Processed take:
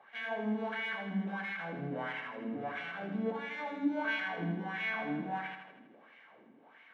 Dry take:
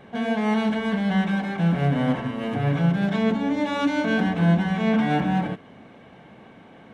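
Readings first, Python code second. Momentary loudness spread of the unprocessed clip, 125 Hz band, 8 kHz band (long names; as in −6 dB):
5 LU, −20.5 dB, can't be measured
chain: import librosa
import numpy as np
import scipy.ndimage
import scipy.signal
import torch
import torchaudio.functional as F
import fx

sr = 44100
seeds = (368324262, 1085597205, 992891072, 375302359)

p1 = scipy.signal.sosfilt(scipy.signal.butter(2, 84.0, 'highpass', fs=sr, output='sos'), x)
p2 = fx.tilt_shelf(p1, sr, db=-5.5, hz=1100.0)
p3 = fx.wah_lfo(p2, sr, hz=1.5, low_hz=250.0, high_hz=2200.0, q=3.1)
p4 = p3 + fx.echo_feedback(p3, sr, ms=80, feedback_pct=56, wet_db=-7.5, dry=0)
y = F.gain(torch.from_numpy(p4), -2.0).numpy()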